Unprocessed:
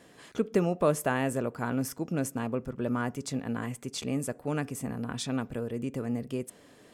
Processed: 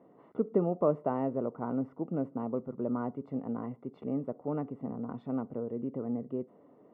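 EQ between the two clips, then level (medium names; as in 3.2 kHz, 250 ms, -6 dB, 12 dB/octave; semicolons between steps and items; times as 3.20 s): Savitzky-Golay filter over 65 samples; high-pass 180 Hz 12 dB/octave; distance through air 480 m; 0.0 dB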